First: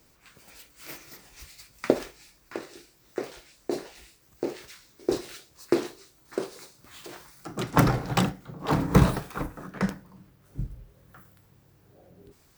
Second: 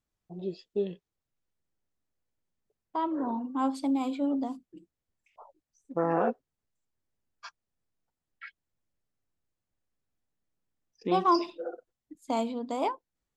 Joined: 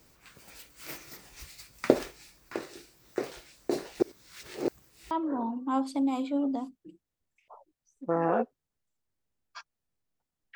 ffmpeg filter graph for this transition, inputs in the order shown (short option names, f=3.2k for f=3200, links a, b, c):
-filter_complex "[0:a]apad=whole_dur=10.55,atrim=end=10.55,asplit=2[a][b];[a]atrim=end=4.002[c];[b]atrim=start=3.998:end=5.112,asetpts=PTS-STARTPTS,areverse[d];[1:a]atrim=start=2.988:end=8.43[e];[c][d]acrossfade=d=0.004:c1=hsin:c2=hsin[f];[f][e]acrossfade=d=0.004:c1=hsin:c2=hsin"